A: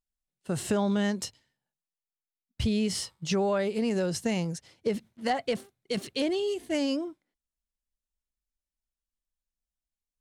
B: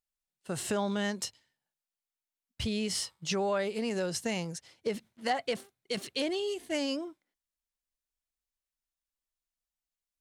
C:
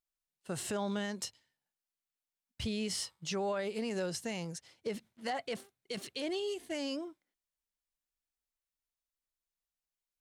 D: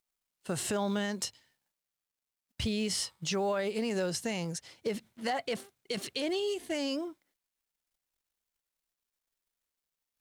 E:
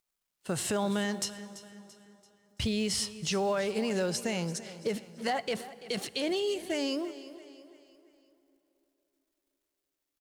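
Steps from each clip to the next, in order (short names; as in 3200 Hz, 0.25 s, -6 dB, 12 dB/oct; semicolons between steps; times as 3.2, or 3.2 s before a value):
low shelf 420 Hz -8 dB
limiter -24 dBFS, peak gain reduction 6.5 dB; gain -3 dB
in parallel at +1.5 dB: compressor, threshold -45 dBFS, peak gain reduction 13 dB; on the sum: companded quantiser 8-bit; gain +1.5 dB
feedback echo 0.337 s, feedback 44%, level -16 dB; plate-style reverb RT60 3.8 s, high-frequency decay 0.7×, DRR 17.5 dB; gain +1.5 dB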